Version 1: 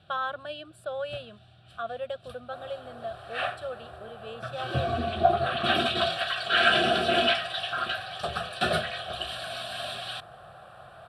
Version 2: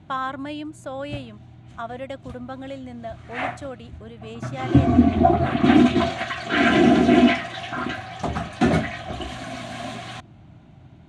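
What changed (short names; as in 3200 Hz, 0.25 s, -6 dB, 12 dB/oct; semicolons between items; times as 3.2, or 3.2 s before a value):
first sound: add tilt -3 dB/oct; second sound: muted; master: remove fixed phaser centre 1400 Hz, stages 8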